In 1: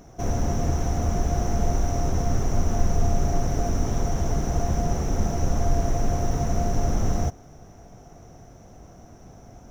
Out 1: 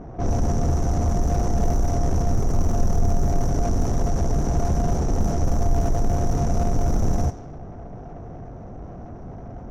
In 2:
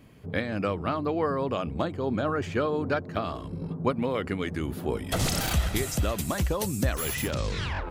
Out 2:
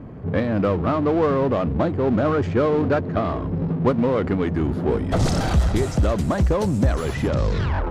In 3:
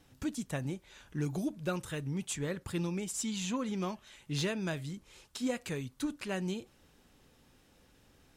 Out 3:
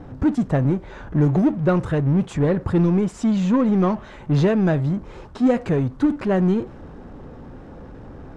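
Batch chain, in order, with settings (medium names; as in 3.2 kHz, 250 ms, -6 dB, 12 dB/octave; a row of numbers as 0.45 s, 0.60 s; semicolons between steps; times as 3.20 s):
peaking EQ 2.7 kHz -12 dB 1.7 oct; power-law waveshaper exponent 0.7; level-controlled noise filter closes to 1.6 kHz, open at -14.5 dBFS; peak normalisation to -9 dBFS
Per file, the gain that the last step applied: -0.5 dB, +5.5 dB, +15.0 dB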